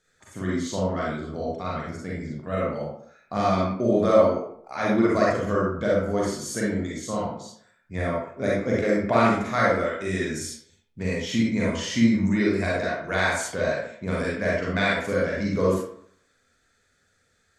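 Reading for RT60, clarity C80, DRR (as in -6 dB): 0.65 s, 4.5 dB, -5.5 dB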